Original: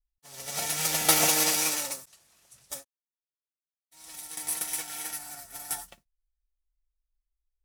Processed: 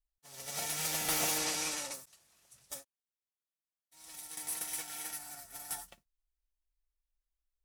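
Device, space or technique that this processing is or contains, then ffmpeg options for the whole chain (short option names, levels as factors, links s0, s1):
saturation between pre-emphasis and de-emphasis: -filter_complex "[0:a]highshelf=f=4900:g=9.5,asoftclip=type=tanh:threshold=0.158,highshelf=f=4900:g=-9.5,asettb=1/sr,asplit=3[s0][s1][s2];[s0]atrim=end=1.384[s3];[s1]atrim=start=1.38:end=1.94,asetpts=PTS-STARTPTS,afade=t=in:d=0.004:c=qsin,afade=t=out:st=0.556:d=0.004:c=qsin,lowpass=9200[s4];[s2]atrim=start=1.936[s5];[s3][s4]acrossfade=d=0.004:c1=hsin:c2=qsin[s6];[s6][s5]acrossfade=d=0.004:c1=qsin:c2=hsin,volume=0.562"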